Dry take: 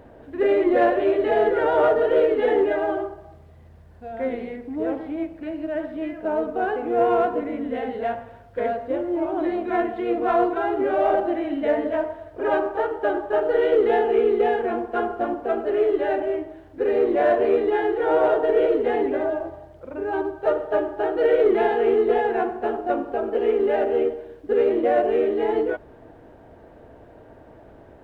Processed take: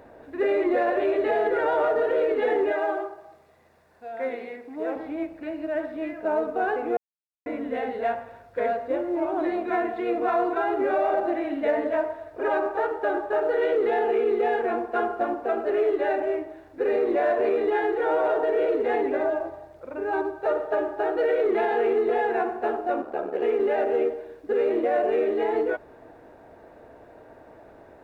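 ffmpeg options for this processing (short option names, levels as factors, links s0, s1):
-filter_complex "[0:a]asettb=1/sr,asplit=3[s0][s1][s2];[s0]atrim=end=2.724[s3];[s1]atrim=start=2.72:end=4.96,asetpts=PTS-STARTPTS,afade=t=in:d=0.004:c=qsin,afade=t=out:st=2.236:d=0.004:c=qsin,highpass=f=400:p=1[s4];[s2]atrim=start=4.956[s5];[s3][s4]acrossfade=d=0.004:c1=hsin:c2=qsin[s6];[s6][s5]acrossfade=d=0.004:c1=qsin:c2=hsin,asettb=1/sr,asplit=3[s7][s8][s9];[s7]atrim=end=23.014[s10];[s8]atrim=start=23.01:end=23.42,asetpts=PTS-STARTPTS,afade=t=in:d=0.004:c=qsin,afade=t=out:st=0.406:d=0.004:c=qsin,aeval=exprs='val(0)*sin(2*PI*37*n/s)':c=same[s11];[s9]atrim=start=23.416[s12];[s10][s11]acrossfade=d=0.004:c1=hsin:c2=qsin[s13];[s13][s12]acrossfade=d=0.004:c1=qsin:c2=hsin,asplit=3[s14][s15][s16];[s14]atrim=end=6.97,asetpts=PTS-STARTPTS,afade=t=out:st=6.966:d=0.004:c=hsin[s17];[s15]atrim=start=6.97:end=7.46,asetpts=PTS-STARTPTS,volume=0[s18];[s16]atrim=start=7.46,asetpts=PTS-STARTPTS,afade=t=in:d=0.004:c=hsin[s19];[s17][s18][s19]concat=n=3:v=0:a=1,lowshelf=f=260:g=-11,bandreject=f=3100:w=7.3,alimiter=limit=0.141:level=0:latency=1:release=53,volume=1.19"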